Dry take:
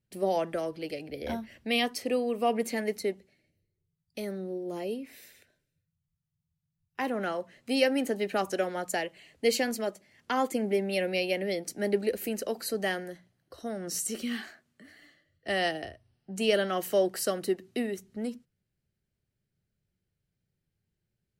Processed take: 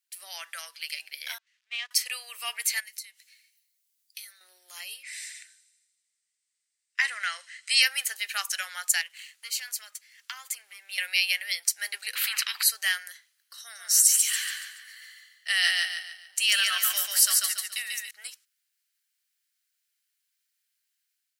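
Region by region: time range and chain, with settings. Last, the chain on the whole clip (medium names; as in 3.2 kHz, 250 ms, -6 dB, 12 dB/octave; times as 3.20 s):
1.38–1.91 s: zero-crossing glitches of -24.5 dBFS + gate -26 dBFS, range -30 dB + tape spacing loss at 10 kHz 36 dB
2.80–4.41 s: tilt shelf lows -5.5 dB, about 1.5 kHz + compression, threshold -48 dBFS
5.03–7.82 s: cabinet simulation 470–8800 Hz, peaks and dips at 490 Hz +5 dB, 910 Hz -6 dB, 2 kHz +9 dB, 4.7 kHz +3 dB, 8.2 kHz +10 dB + feedback echo behind a high-pass 79 ms, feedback 68%, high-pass 4.5 kHz, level -15 dB
9.01–10.98 s: waveshaping leveller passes 1 + compression 8:1, threshold -38 dBFS
12.15–12.63 s: distance through air 480 m + spectrum-flattening compressor 10:1
13.61–18.11 s: bass shelf 310 Hz -10 dB + hard clipper -17.5 dBFS + feedback delay 142 ms, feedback 39%, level -3 dB
whole clip: high-pass 1.4 kHz 24 dB/octave; treble shelf 3.4 kHz +11 dB; level rider gain up to 5 dB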